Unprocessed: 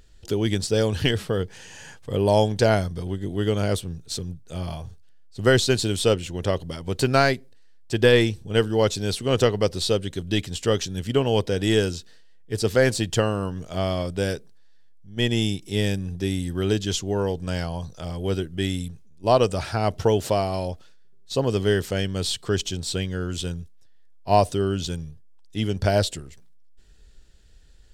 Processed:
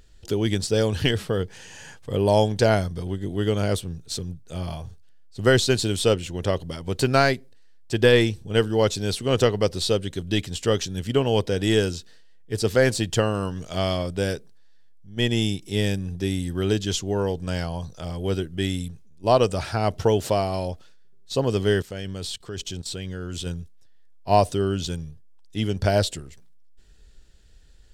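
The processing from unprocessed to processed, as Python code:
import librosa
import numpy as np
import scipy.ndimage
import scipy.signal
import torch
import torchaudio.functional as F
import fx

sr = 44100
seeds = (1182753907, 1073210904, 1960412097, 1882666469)

y = fx.peak_eq(x, sr, hz=4800.0, db=5.5, octaves=2.7, at=(13.34, 13.97))
y = fx.level_steps(y, sr, step_db=16, at=(21.81, 23.45), fade=0.02)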